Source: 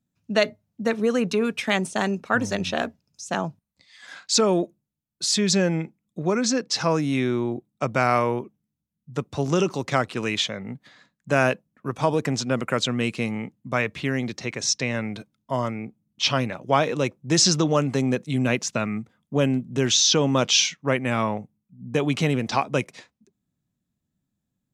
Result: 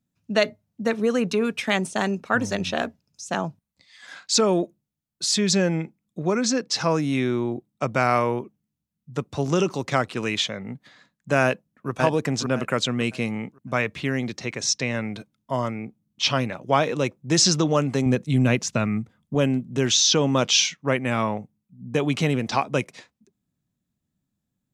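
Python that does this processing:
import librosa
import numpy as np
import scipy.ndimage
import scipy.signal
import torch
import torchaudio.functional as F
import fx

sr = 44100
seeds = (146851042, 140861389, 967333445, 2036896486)

y = fx.echo_throw(x, sr, start_s=11.43, length_s=0.47, ms=560, feedback_pct=25, wet_db=-3.0)
y = fx.low_shelf(y, sr, hz=140.0, db=10.5, at=(18.06, 19.35))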